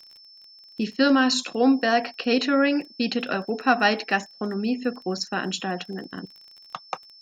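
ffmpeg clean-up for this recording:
-af "adeclick=t=4,bandreject=f=5300:w=30"

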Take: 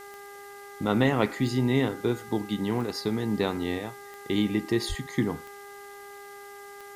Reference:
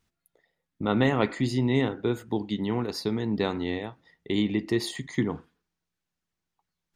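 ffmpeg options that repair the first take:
-filter_complex "[0:a]adeclick=t=4,bandreject=f=403.3:t=h:w=4,bandreject=f=806.6:t=h:w=4,bandreject=f=1209.9:t=h:w=4,bandreject=f=1613.2:t=h:w=4,bandreject=f=2016.5:t=h:w=4,asplit=3[s0][s1][s2];[s0]afade=t=out:st=4.88:d=0.02[s3];[s1]highpass=f=140:w=0.5412,highpass=f=140:w=1.3066,afade=t=in:st=4.88:d=0.02,afade=t=out:st=5:d=0.02[s4];[s2]afade=t=in:st=5:d=0.02[s5];[s3][s4][s5]amix=inputs=3:normalize=0,afwtdn=0.0022"

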